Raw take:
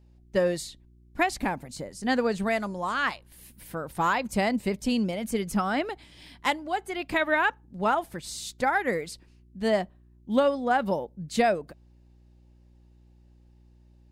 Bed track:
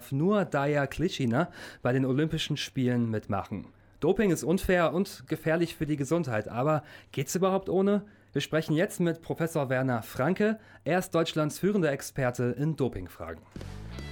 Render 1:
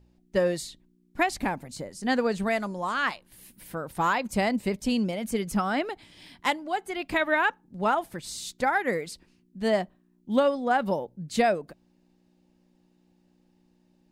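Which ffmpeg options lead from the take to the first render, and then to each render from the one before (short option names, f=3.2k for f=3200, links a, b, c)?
-af "bandreject=f=60:t=h:w=4,bandreject=f=120:t=h:w=4"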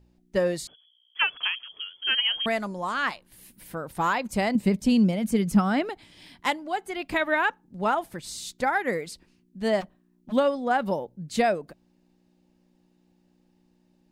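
-filter_complex "[0:a]asettb=1/sr,asplit=3[a][b][c];[a]atrim=end=0.674[d];[b]atrim=start=0.67:end=2.46,asetpts=PTS-STARTPTS,afade=t=in:d=0.004:c=qsin,afade=t=out:st=1.786:d=0.004:c=qsin,lowpass=f=2.9k:t=q:w=0.5098,lowpass=f=2.9k:t=q:w=0.6013,lowpass=f=2.9k:t=q:w=0.9,lowpass=f=2.9k:t=q:w=2.563,afreqshift=-3400[e];[c]atrim=start=2.456[f];[d][e]acrossfade=d=0.004:c1=hsin:c2=qsin[g];[g][f]acrossfade=d=0.004:c1=qsin:c2=hsin,asettb=1/sr,asplit=3[h][i][j];[h]atrim=end=4.554[k];[i]atrim=start=4.55:end=5.9,asetpts=PTS-STARTPTS,afade=t=in:d=0.004:c=qsin,afade=t=out:st=1.346:d=0.004:c=qsin,equalizer=f=180:t=o:w=1.2:g=8.5[l];[j]atrim=start=5.896[m];[k][l]acrossfade=d=0.004:c1=hsin:c2=qsin[n];[n][m]acrossfade=d=0.004:c1=qsin:c2=hsin,asplit=3[o][p][q];[o]afade=t=out:st=9.8:d=0.02[r];[p]aeval=exprs='0.0168*(abs(mod(val(0)/0.0168+3,4)-2)-1)':c=same,afade=t=in:st=9.8:d=0.02,afade=t=out:st=10.31:d=0.02[s];[q]afade=t=in:st=10.31:d=0.02[t];[r][s][t]amix=inputs=3:normalize=0"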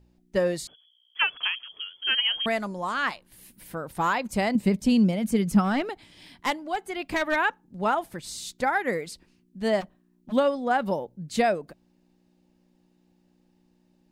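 -filter_complex "[0:a]asettb=1/sr,asplit=3[a][b][c];[a]atrim=end=5.644[d];[b]atrim=start=5.64:end=7.36,asetpts=PTS-STARTPTS,afade=t=in:d=0.004:c=qsin,afade=t=out:st=1.716:d=0.004:c=qsin,aeval=exprs='clip(val(0),-1,0.0668)':c=same[e];[c]atrim=start=7.356[f];[d][e]acrossfade=d=0.004:c1=hsin:c2=qsin[g];[g][f]acrossfade=d=0.004:c1=qsin:c2=hsin"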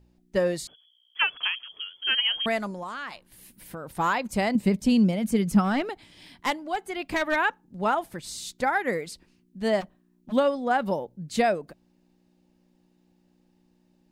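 -filter_complex "[0:a]asettb=1/sr,asplit=3[a][b][c];[a]atrim=end=2.704[d];[b]atrim=start=2.7:end=3.96,asetpts=PTS-STARTPTS,afade=t=in:d=0.004:c=qsin,afade=t=out:st=1.256:d=0.004:c=qsin,acompressor=threshold=-31dB:ratio=10:attack=3.2:release=140:knee=1:detection=peak[e];[c]atrim=start=3.956[f];[d][e]acrossfade=d=0.004:c1=hsin:c2=qsin[g];[g][f]acrossfade=d=0.004:c1=qsin:c2=hsin"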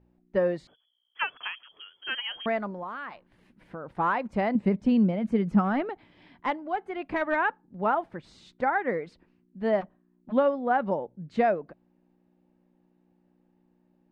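-af "lowpass=1.7k,lowshelf=f=120:g=-7.5"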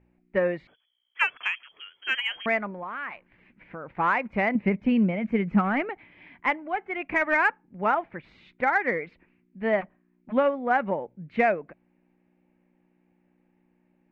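-af "lowpass=f=2.3k:t=q:w=4.3,aeval=exprs='0.355*(cos(1*acos(clip(val(0)/0.355,-1,1)))-cos(1*PI/2))+0.00398*(cos(7*acos(clip(val(0)/0.355,-1,1)))-cos(7*PI/2))':c=same"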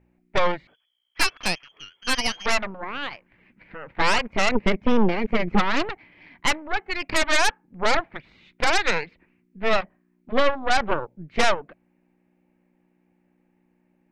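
-af "asoftclip=type=tanh:threshold=-11.5dB,aeval=exprs='0.237*(cos(1*acos(clip(val(0)/0.237,-1,1)))-cos(1*PI/2))+0.0211*(cos(3*acos(clip(val(0)/0.237,-1,1)))-cos(3*PI/2))+0.0188*(cos(5*acos(clip(val(0)/0.237,-1,1)))-cos(5*PI/2))+0.106*(cos(6*acos(clip(val(0)/0.237,-1,1)))-cos(6*PI/2))':c=same"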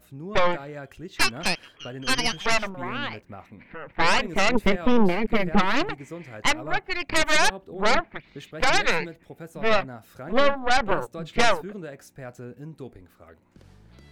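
-filter_complex "[1:a]volume=-11dB[a];[0:a][a]amix=inputs=2:normalize=0"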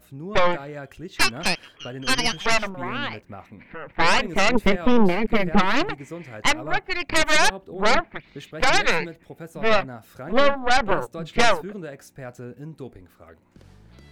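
-af "volume=2dB"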